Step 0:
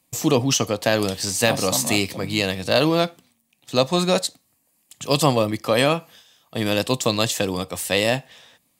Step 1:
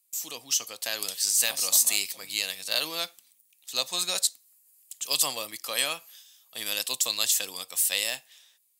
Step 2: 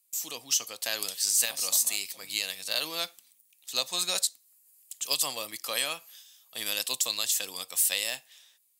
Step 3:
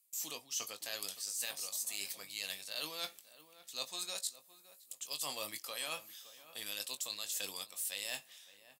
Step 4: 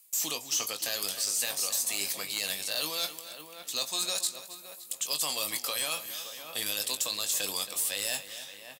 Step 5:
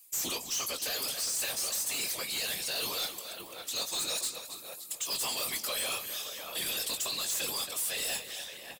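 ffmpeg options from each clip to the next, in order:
-af "aderivative,dynaudnorm=f=130:g=11:m=8dB,volume=-4dB"
-af "alimiter=limit=-12.5dB:level=0:latency=1:release=419"
-filter_complex "[0:a]areverse,acompressor=threshold=-35dB:ratio=6,areverse,asplit=2[a][b];[b]adelay=20,volume=-9dB[c];[a][c]amix=inputs=2:normalize=0,asplit=2[d][e];[e]adelay=565,lowpass=f=1.7k:p=1,volume=-15dB,asplit=2[f][g];[g]adelay=565,lowpass=f=1.7k:p=1,volume=0.33,asplit=2[h][i];[i]adelay=565,lowpass=f=1.7k:p=1,volume=0.33[j];[d][f][h][j]amix=inputs=4:normalize=0,volume=-2.5dB"
-filter_complex "[0:a]acrossover=split=1700|4300[a][b][c];[a]acompressor=threshold=-51dB:ratio=4[d];[b]acompressor=threshold=-50dB:ratio=4[e];[c]acompressor=threshold=-41dB:ratio=4[f];[d][e][f]amix=inputs=3:normalize=0,aeval=exprs='0.0708*sin(PI/2*2.51*val(0)/0.0708)':c=same,asplit=2[g][h];[h]adelay=274.1,volume=-12dB,highshelf=f=4k:g=-6.17[i];[g][i]amix=inputs=2:normalize=0,volume=2dB"
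-af "afftfilt=real='hypot(re,im)*cos(2*PI*random(0))':imag='hypot(re,im)*sin(2*PI*random(1))':win_size=512:overlap=0.75,asoftclip=type=tanh:threshold=-36.5dB,volume=8dB"

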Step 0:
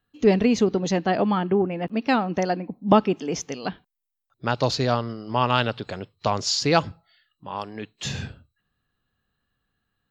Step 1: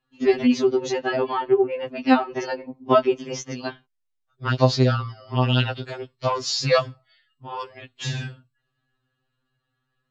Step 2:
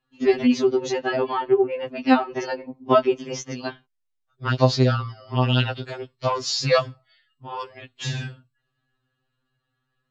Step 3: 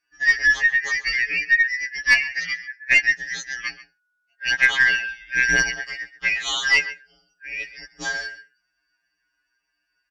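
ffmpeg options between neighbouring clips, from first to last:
-af "lowpass=6.6k,afftfilt=real='re*2.45*eq(mod(b,6),0)':imag='im*2.45*eq(mod(b,6),0)':win_size=2048:overlap=0.75,volume=3dB"
-af anull
-filter_complex "[0:a]afftfilt=real='real(if(lt(b,272),68*(eq(floor(b/68),0)*2+eq(floor(b/68),1)*0+eq(floor(b/68),2)*3+eq(floor(b/68),3)*1)+mod(b,68),b),0)':imag='imag(if(lt(b,272),68*(eq(floor(b/68),0)*2+eq(floor(b/68),1)*0+eq(floor(b/68),2)*3+eq(floor(b/68),3)*1)+mod(b,68),b),0)':win_size=2048:overlap=0.75,asplit=2[a][b];[b]adelay=134.1,volume=-16dB,highshelf=f=4k:g=-3.02[c];[a][c]amix=inputs=2:normalize=0,aeval=exprs='0.891*(cos(1*acos(clip(val(0)/0.891,-1,1)))-cos(1*PI/2))+0.0316*(cos(4*acos(clip(val(0)/0.891,-1,1)))-cos(4*PI/2))+0.0447*(cos(5*acos(clip(val(0)/0.891,-1,1)))-cos(5*PI/2))':c=same,volume=-1dB"

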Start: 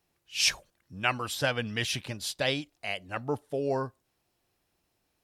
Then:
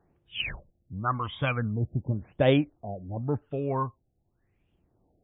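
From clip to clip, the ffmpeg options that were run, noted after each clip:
-af "tiltshelf=f=910:g=3,aphaser=in_gain=1:out_gain=1:delay=1:decay=0.68:speed=0.39:type=triangular,afftfilt=real='re*lt(b*sr/1024,780*pow(3800/780,0.5+0.5*sin(2*PI*0.91*pts/sr)))':imag='im*lt(b*sr/1024,780*pow(3800/780,0.5+0.5*sin(2*PI*0.91*pts/sr)))':win_size=1024:overlap=0.75"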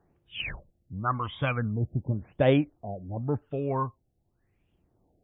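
-filter_complex "[0:a]acrossover=split=3000[a][b];[b]acompressor=threshold=-44dB:ratio=4:attack=1:release=60[c];[a][c]amix=inputs=2:normalize=0"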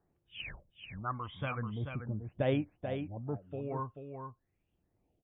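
-af "aecho=1:1:436:0.447,volume=-9dB"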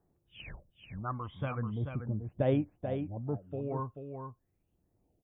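-af "equalizer=f=2.7k:t=o:w=2.2:g=-9,volume=3dB"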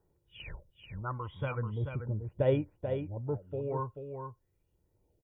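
-af "aecho=1:1:2.1:0.52"

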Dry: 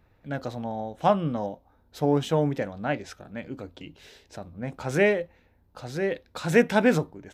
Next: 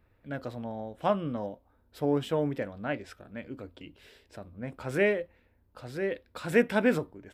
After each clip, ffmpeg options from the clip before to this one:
-af "equalizer=f=160:t=o:w=0.33:g=-6,equalizer=f=800:t=o:w=0.33:g=-6,equalizer=f=4k:t=o:w=0.33:g=-4,equalizer=f=6.3k:t=o:w=0.33:g=-11,volume=-3.5dB"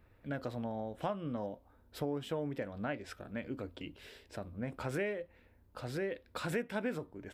-af "acompressor=threshold=-37dB:ratio=4,volume=2dB"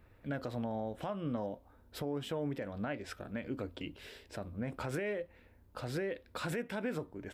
-af "alimiter=level_in=6dB:limit=-24dB:level=0:latency=1:release=76,volume=-6dB,volume=2.5dB"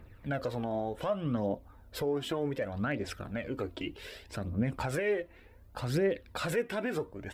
-af "aphaser=in_gain=1:out_gain=1:delay=3.1:decay=0.51:speed=0.66:type=triangular,volume=4dB"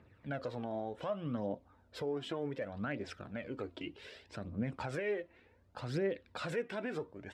-af "highpass=100,lowpass=6.2k,volume=-5.5dB"

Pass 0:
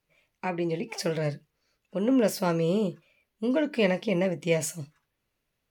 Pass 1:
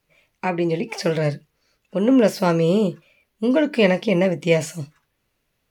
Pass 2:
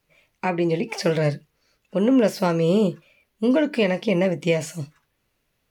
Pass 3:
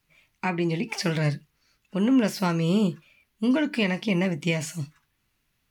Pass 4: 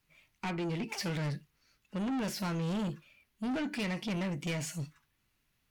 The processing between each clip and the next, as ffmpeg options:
-filter_complex "[0:a]acrossover=split=5100[a][b];[b]acompressor=threshold=-44dB:ratio=4:attack=1:release=60[c];[a][c]amix=inputs=2:normalize=0,volume=7.5dB"
-af "alimiter=limit=-9.5dB:level=0:latency=1:release=322"
-af "equalizer=f=520:t=o:w=0.95:g=-11"
-af "asoftclip=type=tanh:threshold=-27.5dB,volume=-3.5dB"

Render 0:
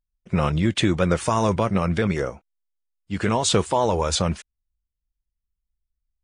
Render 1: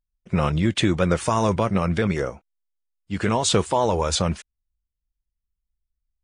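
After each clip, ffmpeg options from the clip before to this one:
-af anull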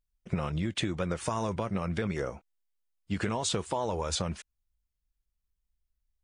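-af "acompressor=threshold=-27dB:ratio=12"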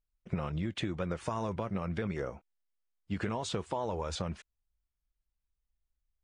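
-af "aemphasis=mode=reproduction:type=50kf,volume=-3dB"

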